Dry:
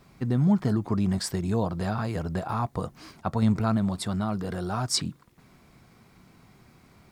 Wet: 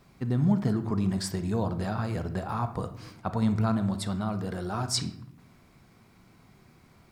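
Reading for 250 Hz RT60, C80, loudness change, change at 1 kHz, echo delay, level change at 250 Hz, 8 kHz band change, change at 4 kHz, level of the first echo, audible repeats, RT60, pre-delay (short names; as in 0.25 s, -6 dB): 1.1 s, 14.5 dB, -2.0 dB, -2.0 dB, none, -2.0 dB, -2.5 dB, -2.5 dB, none, none, 0.75 s, 32 ms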